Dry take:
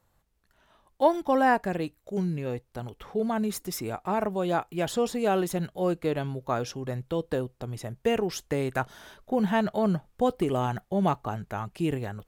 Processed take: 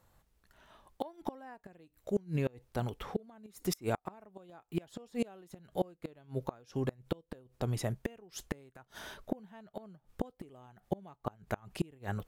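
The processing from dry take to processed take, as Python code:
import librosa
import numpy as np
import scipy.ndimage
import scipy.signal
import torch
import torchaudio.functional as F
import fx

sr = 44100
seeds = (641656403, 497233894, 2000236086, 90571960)

y = fx.gate_flip(x, sr, shuts_db=-21.0, range_db=-30)
y = y * librosa.db_to_amplitude(2.0)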